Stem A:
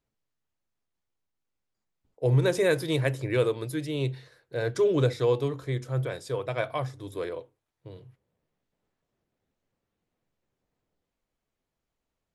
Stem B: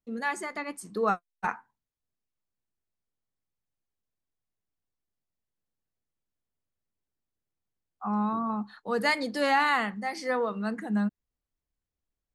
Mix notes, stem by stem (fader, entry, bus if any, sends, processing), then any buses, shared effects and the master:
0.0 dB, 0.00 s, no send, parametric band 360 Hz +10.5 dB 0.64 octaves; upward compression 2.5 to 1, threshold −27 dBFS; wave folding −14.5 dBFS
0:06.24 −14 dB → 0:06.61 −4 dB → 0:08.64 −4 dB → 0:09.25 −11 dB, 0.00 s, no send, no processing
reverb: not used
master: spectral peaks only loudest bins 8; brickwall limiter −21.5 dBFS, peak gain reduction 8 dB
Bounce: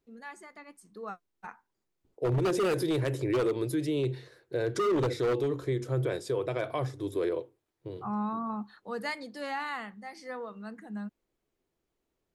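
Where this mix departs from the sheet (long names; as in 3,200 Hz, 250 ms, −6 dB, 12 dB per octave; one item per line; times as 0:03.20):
stem A: missing upward compression 2.5 to 1, threshold −27 dBFS
master: missing spectral peaks only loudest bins 8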